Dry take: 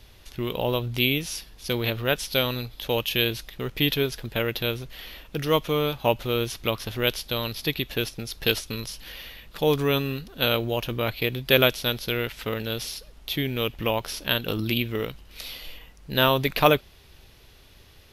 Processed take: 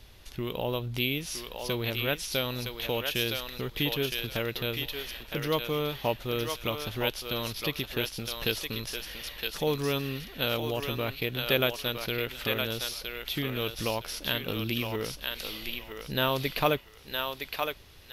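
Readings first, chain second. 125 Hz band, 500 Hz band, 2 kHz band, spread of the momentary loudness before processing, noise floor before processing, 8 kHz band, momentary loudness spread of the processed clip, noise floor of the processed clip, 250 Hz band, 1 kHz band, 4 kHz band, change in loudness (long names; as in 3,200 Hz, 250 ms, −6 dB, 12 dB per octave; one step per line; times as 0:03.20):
−5.5 dB, −5.5 dB, −4.5 dB, 14 LU, −52 dBFS, −2.0 dB, 7 LU, −51 dBFS, −5.5 dB, −5.5 dB, −4.0 dB, −5.5 dB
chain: in parallel at +2.5 dB: downward compressor, threshold −31 dBFS, peak gain reduction 18 dB
on the sum: feedback echo with a high-pass in the loop 964 ms, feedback 27%, high-pass 720 Hz, level −3 dB
level −9 dB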